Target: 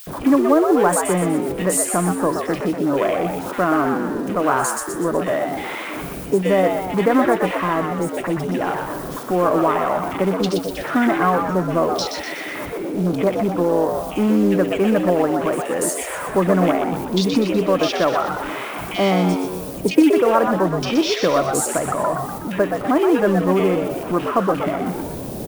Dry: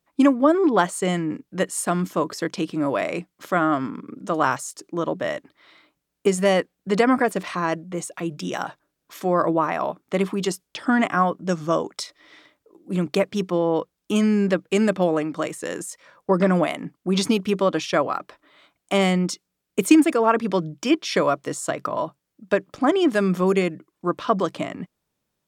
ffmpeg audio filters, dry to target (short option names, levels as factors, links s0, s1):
-filter_complex "[0:a]aeval=exprs='val(0)+0.5*0.0562*sgn(val(0))':c=same,afwtdn=0.0316,lowshelf=f=94:g=-4.5,asplit=2[s0][s1];[s1]acompressor=threshold=0.0282:ratio=5,volume=1.26[s2];[s0][s2]amix=inputs=2:normalize=0,acrossover=split=2000[s3][s4];[s3]adelay=70[s5];[s5][s4]amix=inputs=2:normalize=0,aexciter=amount=1.4:drive=6.8:freq=9200,acrusher=bits=7:mode=log:mix=0:aa=0.000001,asplit=2[s6][s7];[s7]asplit=6[s8][s9][s10][s11][s12][s13];[s8]adelay=123,afreqshift=93,volume=0.501[s14];[s9]adelay=246,afreqshift=186,volume=0.245[s15];[s10]adelay=369,afreqshift=279,volume=0.12[s16];[s11]adelay=492,afreqshift=372,volume=0.0589[s17];[s12]adelay=615,afreqshift=465,volume=0.0288[s18];[s13]adelay=738,afreqshift=558,volume=0.0141[s19];[s14][s15][s16][s17][s18][s19]amix=inputs=6:normalize=0[s20];[s6][s20]amix=inputs=2:normalize=0,volume=0.891"